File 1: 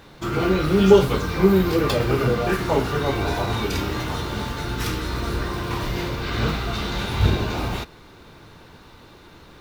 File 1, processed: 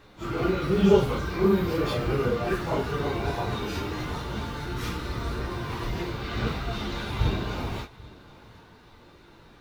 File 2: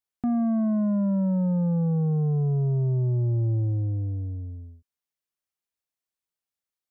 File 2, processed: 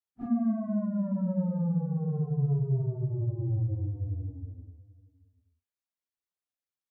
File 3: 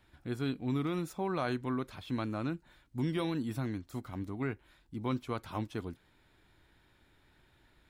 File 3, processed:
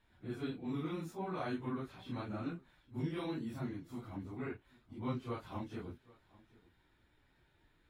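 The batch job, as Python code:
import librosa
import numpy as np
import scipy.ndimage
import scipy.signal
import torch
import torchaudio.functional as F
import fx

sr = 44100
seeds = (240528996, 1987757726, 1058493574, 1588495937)

y = fx.phase_scramble(x, sr, seeds[0], window_ms=100)
y = fx.high_shelf(y, sr, hz=5200.0, db=-5.0)
y = y + 10.0 ** (-22.5 / 20.0) * np.pad(y, (int(786 * sr / 1000.0), 0))[:len(y)]
y = y * librosa.db_to_amplitude(-5.5)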